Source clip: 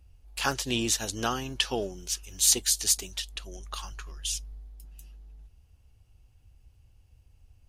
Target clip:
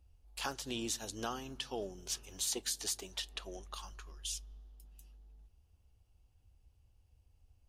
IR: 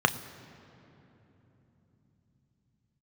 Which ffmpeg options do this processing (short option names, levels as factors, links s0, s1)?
-filter_complex "[0:a]asettb=1/sr,asplit=3[s0][s1][s2];[s0]atrim=end=2.064[s3];[s1]atrim=start=2.06:end=3.66,asetpts=PTS-STARTPTS,afade=t=in:d=0.004:c=qsin,afade=t=out:st=1.596:d=0.004:c=qsin,equalizer=f=830:w=0.33:g=9.5[s4];[s2]atrim=start=3.656[s5];[s3][s4]acrossfade=d=0.004:c1=hsin:c2=qsin[s6];[s6][s5]acrossfade=d=0.004:c1=qsin:c2=hsin,alimiter=limit=0.158:level=0:latency=1:release=312,asplit=2[s7][s8];[1:a]atrim=start_sample=2205,lowpass=4300[s9];[s8][s9]afir=irnorm=-1:irlink=0,volume=0.0562[s10];[s7][s10]amix=inputs=2:normalize=0,volume=0.376"